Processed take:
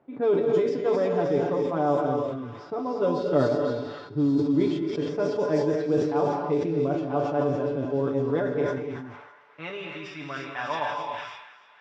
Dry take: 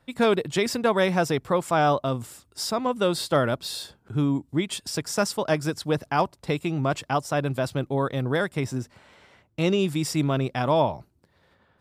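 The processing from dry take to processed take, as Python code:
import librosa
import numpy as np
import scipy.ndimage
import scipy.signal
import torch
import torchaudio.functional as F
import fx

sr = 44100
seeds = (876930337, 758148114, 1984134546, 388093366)

p1 = fx.spec_trails(x, sr, decay_s=0.3)
p2 = fx.peak_eq(p1, sr, hz=110.0, db=3.5, octaves=0.72)
p3 = p2 + 0.74 * np.pad(p2, (int(6.9 * sr / 1000.0), 0))[:len(p2)]
p4 = fx.rider(p3, sr, range_db=10, speed_s=2.0)
p5 = p3 + (p4 * 10.0 ** (2.0 / 20.0))
p6 = fx.ladder_lowpass(p5, sr, hz=7300.0, resonance_pct=50)
p7 = fx.quant_dither(p6, sr, seeds[0], bits=8, dither='triangular')
p8 = fx.filter_sweep_bandpass(p7, sr, from_hz=370.0, to_hz=1600.0, start_s=8.27, end_s=9.45, q=1.4)
p9 = p8 + fx.echo_wet_highpass(p8, sr, ms=305, feedback_pct=72, hz=3000.0, wet_db=-4, dry=0)
p10 = fx.rev_gated(p9, sr, seeds[1], gate_ms=310, shape='rising', drr_db=2.5)
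p11 = fx.env_lowpass(p10, sr, base_hz=1500.0, full_db=-17.0)
y = fx.sustainer(p11, sr, db_per_s=47.0)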